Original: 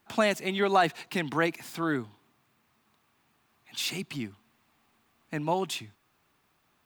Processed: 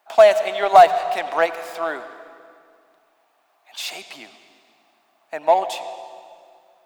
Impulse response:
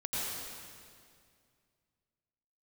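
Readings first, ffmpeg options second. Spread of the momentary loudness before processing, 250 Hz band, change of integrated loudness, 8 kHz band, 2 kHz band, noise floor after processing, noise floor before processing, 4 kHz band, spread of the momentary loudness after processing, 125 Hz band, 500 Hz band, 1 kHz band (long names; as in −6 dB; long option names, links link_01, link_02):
13 LU, −8.0 dB, +11.5 dB, +2.5 dB, +5.0 dB, −64 dBFS, −71 dBFS, +3.5 dB, 22 LU, below −10 dB, +13.5 dB, +13.5 dB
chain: -filter_complex "[0:a]highpass=frequency=660:width_type=q:width=4.9,aeval=exprs='0.447*(cos(1*acos(clip(val(0)/0.447,-1,1)))-cos(1*PI/2))+0.0141*(cos(7*acos(clip(val(0)/0.447,-1,1)))-cos(7*PI/2))':channel_layout=same,asplit=2[link_01][link_02];[1:a]atrim=start_sample=2205,lowpass=7700[link_03];[link_02][link_03]afir=irnorm=-1:irlink=0,volume=-15dB[link_04];[link_01][link_04]amix=inputs=2:normalize=0,volume=3dB"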